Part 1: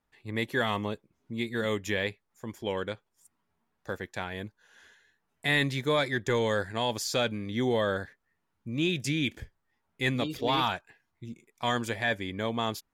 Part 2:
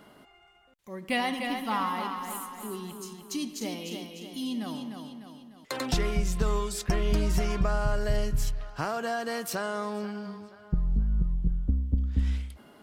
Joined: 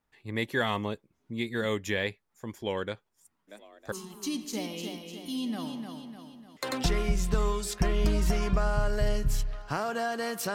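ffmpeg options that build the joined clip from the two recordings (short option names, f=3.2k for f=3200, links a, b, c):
-filter_complex "[0:a]asplit=3[a][b][c];[a]afade=t=out:st=3.47:d=0.02[d];[b]asplit=6[e][f][g][h][i][j];[f]adelay=318,afreqshift=51,volume=-5dB[k];[g]adelay=636,afreqshift=102,volume=-13.6dB[l];[h]adelay=954,afreqshift=153,volume=-22.3dB[m];[i]adelay=1272,afreqshift=204,volume=-30.9dB[n];[j]adelay=1590,afreqshift=255,volume=-39.5dB[o];[e][k][l][m][n][o]amix=inputs=6:normalize=0,afade=t=in:st=3.47:d=0.02,afade=t=out:st=3.92:d=0.02[p];[c]afade=t=in:st=3.92:d=0.02[q];[d][p][q]amix=inputs=3:normalize=0,apad=whole_dur=10.54,atrim=end=10.54,atrim=end=3.922[r];[1:a]atrim=start=2.998:end=9.62[s];[r][s]acrossfade=d=0.004:c1=hsin:c2=hsin"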